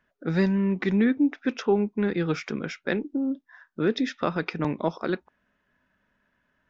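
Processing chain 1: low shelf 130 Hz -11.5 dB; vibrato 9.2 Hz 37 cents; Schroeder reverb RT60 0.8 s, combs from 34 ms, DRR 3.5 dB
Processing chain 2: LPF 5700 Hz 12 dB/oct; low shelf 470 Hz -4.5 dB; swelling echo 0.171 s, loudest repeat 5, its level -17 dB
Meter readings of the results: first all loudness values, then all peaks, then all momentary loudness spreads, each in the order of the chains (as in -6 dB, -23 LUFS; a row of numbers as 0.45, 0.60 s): -27.0, -29.5 LUFS; -10.5, -11.5 dBFS; 8, 13 LU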